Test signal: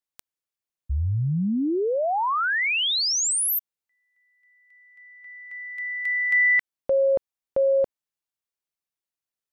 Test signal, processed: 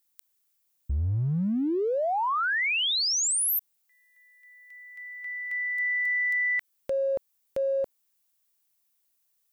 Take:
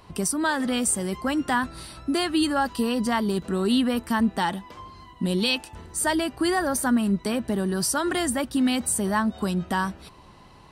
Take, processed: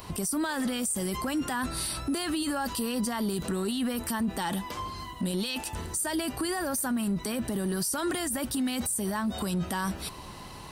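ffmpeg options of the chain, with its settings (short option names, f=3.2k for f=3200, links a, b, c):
-af "aemphasis=mode=production:type=50kf,acompressor=threshold=-30dB:ratio=16:attack=0.13:release=36:knee=6:detection=peak,volume=6dB"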